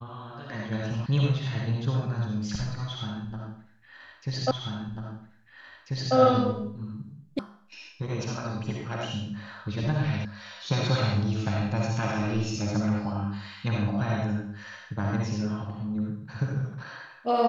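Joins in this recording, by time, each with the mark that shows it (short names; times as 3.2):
1.06 sound cut off
4.51 repeat of the last 1.64 s
7.39 sound cut off
10.25 sound cut off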